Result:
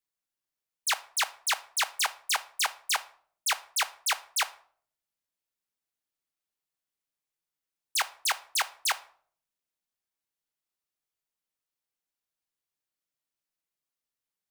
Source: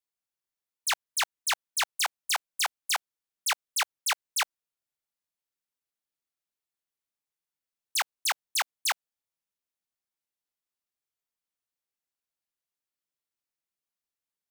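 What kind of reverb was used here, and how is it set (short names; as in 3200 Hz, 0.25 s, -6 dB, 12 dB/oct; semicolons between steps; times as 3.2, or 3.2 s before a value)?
shoebox room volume 640 m³, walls furnished, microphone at 0.59 m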